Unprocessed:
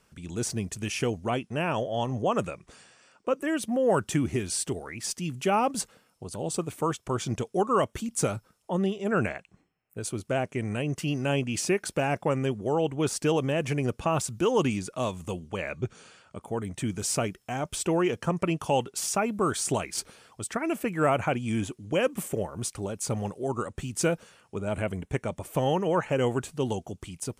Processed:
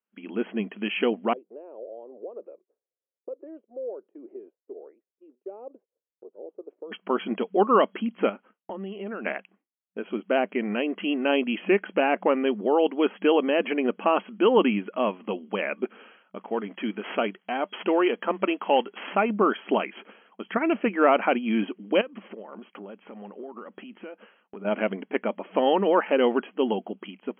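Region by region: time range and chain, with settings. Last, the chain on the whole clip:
1.33–6.92 s: tilt EQ +3 dB/octave + compression 2.5:1, threshold -39 dBFS + Butterworth band-pass 440 Hz, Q 1.9
8.29–9.26 s: hum notches 50/100 Hz + compression, threshold -36 dBFS
16.36–19.30 s: CVSD coder 64 kbps + bass shelf 220 Hz -6.5 dB
22.01–24.65 s: band-pass 110–4200 Hz + compression 16:1, threshold -39 dBFS
whole clip: FFT band-pass 190–3300 Hz; expander -50 dBFS; de-esser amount 90%; trim +5 dB

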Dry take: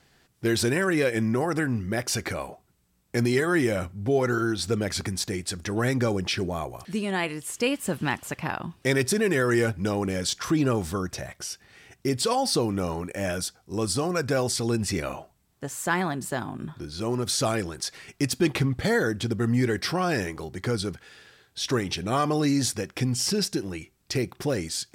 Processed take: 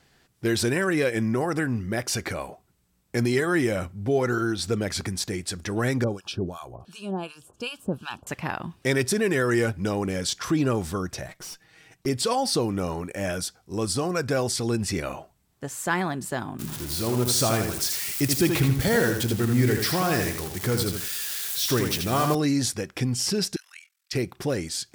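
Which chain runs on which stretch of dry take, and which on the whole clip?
6.04–8.27 s: tone controls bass +2 dB, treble -3 dB + harmonic tremolo 2.7 Hz, depth 100%, crossover 950 Hz + Butterworth band-stop 2 kHz, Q 2.2
11.28–12.06 s: comb 6.3 ms, depth 93% + valve stage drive 35 dB, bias 0.8
16.59–22.35 s: zero-crossing glitches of -23 dBFS + bass shelf 65 Hz +10 dB + bit-crushed delay 81 ms, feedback 35%, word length 7-bit, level -5 dB
23.56–24.13 s: inverse Chebyshev high-pass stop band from 300 Hz, stop band 70 dB + ring modulator 21 Hz
whole clip: none

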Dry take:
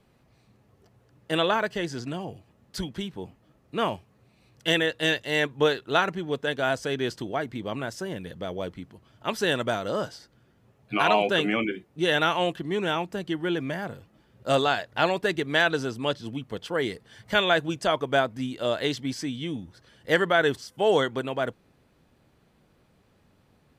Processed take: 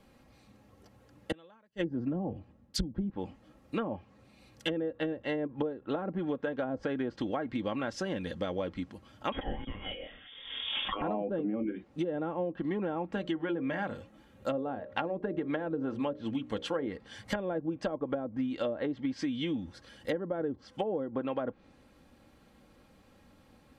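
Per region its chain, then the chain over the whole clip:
1.31–3.10 s: inverted gate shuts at -19 dBFS, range -33 dB + bass shelf 440 Hz +9 dB + three bands expanded up and down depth 70%
9.32–11.02 s: doubling 26 ms -4 dB + frequency inversion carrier 3.5 kHz + swell ahead of each attack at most 47 dB/s
13.12–16.88 s: peaking EQ 4.9 kHz -7.5 dB 0.23 oct + hum notches 60/120/180/240/300/360/420/480/540/600 Hz
whole clip: low-pass that closes with the level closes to 480 Hz, closed at -21 dBFS; comb 3.7 ms, depth 50%; compression 10:1, threshold -31 dBFS; trim +2 dB

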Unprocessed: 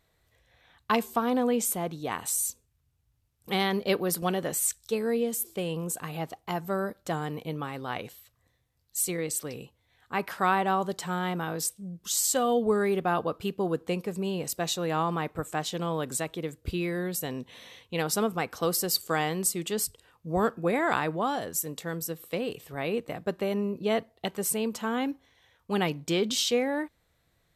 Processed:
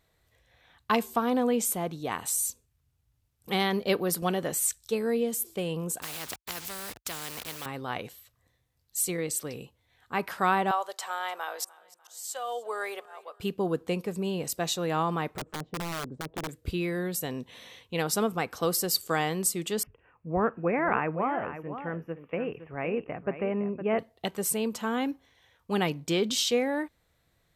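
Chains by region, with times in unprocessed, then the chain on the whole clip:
6.02–7.66 s: send-on-delta sampling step -52 dBFS + high-pass 48 Hz 24 dB/octave + spectrum-flattening compressor 4:1
10.71–13.40 s: high-pass 570 Hz 24 dB/octave + slow attack 726 ms + feedback delay 298 ms, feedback 42%, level -22 dB
15.29–16.49 s: low-pass that closes with the level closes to 410 Hz, closed at -29 dBFS + integer overflow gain 28.5 dB
19.83–23.99 s: elliptic low-pass 2.6 kHz + delay 512 ms -11 dB
whole clip: none

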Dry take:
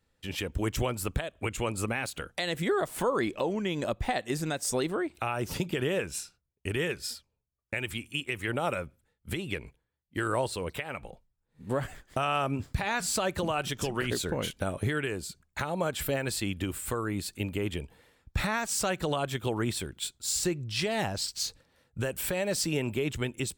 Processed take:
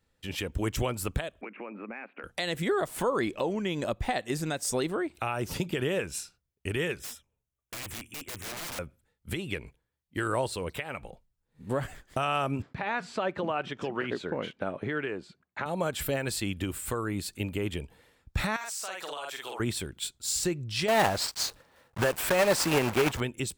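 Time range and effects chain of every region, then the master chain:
1.41–2.24 s: Chebyshev band-pass 200–2500 Hz, order 5 + compression 4:1, threshold -37 dBFS
6.99–8.79 s: Butterworth band-stop 4.5 kHz, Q 2.8 + integer overflow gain 33 dB
12.62–15.66 s: block-companded coder 7-bit + band-pass 190–2400 Hz
18.56–19.60 s: high-pass 730 Hz + doubling 48 ms -2 dB + compression 4:1, threshold -34 dBFS
20.88–23.22 s: block-companded coder 3-bit + peaking EQ 970 Hz +9.5 dB 2.5 oct
whole clip: none

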